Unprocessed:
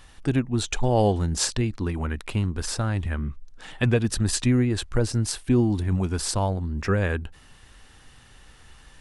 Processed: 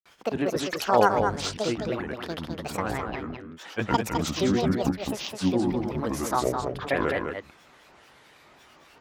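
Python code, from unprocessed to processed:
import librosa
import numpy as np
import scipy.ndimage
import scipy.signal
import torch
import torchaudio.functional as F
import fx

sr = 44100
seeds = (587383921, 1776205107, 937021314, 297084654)

p1 = scipy.signal.sosfilt(scipy.signal.butter(2, 510.0, 'highpass', fs=sr, output='sos'), x)
p2 = fx.tilt_eq(p1, sr, slope=-3.5)
p3 = fx.granulator(p2, sr, seeds[0], grain_ms=142.0, per_s=20.0, spray_ms=100.0, spread_st=12)
p4 = p3 + fx.echo_single(p3, sr, ms=209, db=-5.5, dry=0)
y = p4 * librosa.db_to_amplitude(5.5)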